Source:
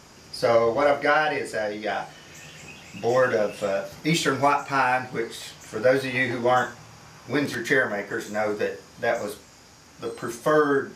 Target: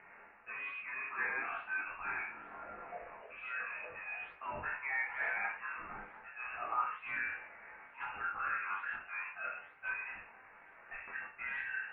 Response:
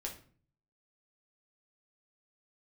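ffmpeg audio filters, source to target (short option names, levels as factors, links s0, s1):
-filter_complex "[0:a]asplit=2[s0][s1];[s1]aeval=exprs='0.0944*(abs(mod(val(0)/0.0944+3,4)-2)-1)':c=same,volume=0.282[s2];[s0][s2]amix=inputs=2:normalize=0,flanger=delay=20:depth=2.5:speed=0.23[s3];[1:a]atrim=start_sample=2205[s4];[s3][s4]afir=irnorm=-1:irlink=0,areverse,acompressor=threshold=0.0251:ratio=6,areverse,highpass=1300,acompressor=mode=upward:threshold=0.00126:ratio=2.5,lowpass=f=2800:t=q:w=0.5098,lowpass=f=2800:t=q:w=0.6013,lowpass=f=2800:t=q:w=0.9,lowpass=f=2800:t=q:w=2.563,afreqshift=-3300,flanger=delay=0.4:depth=8.3:regen=-82:speed=1.2:shape=sinusoidal,asetrate=40517,aresample=44100,volume=2.37"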